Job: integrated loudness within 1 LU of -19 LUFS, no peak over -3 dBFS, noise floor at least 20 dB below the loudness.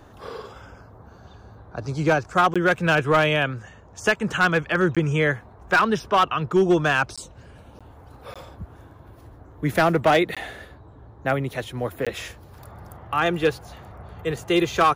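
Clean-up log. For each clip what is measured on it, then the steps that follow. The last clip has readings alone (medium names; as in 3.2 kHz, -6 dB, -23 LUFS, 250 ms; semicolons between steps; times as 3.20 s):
clipped samples 0.6%; clipping level -11.5 dBFS; dropouts 7; longest dropout 16 ms; loudness -22.0 LUFS; peak level -11.5 dBFS; loudness target -19.0 LUFS
-> clip repair -11.5 dBFS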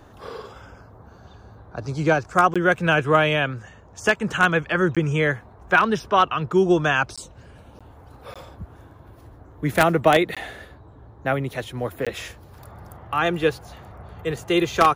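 clipped samples 0.0%; dropouts 7; longest dropout 16 ms
-> interpolate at 2.54/4.95/7.16/7.79/8.34/10.35/12.05 s, 16 ms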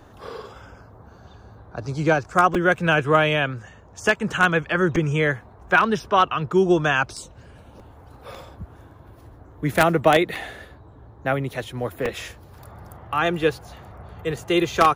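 dropouts 0; loudness -21.5 LUFS; peak level -2.5 dBFS; loudness target -19.0 LUFS
-> trim +2.5 dB; peak limiter -3 dBFS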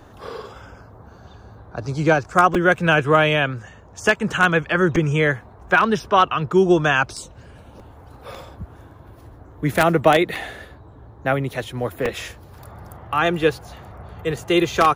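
loudness -19.0 LUFS; peak level -3.0 dBFS; noise floor -45 dBFS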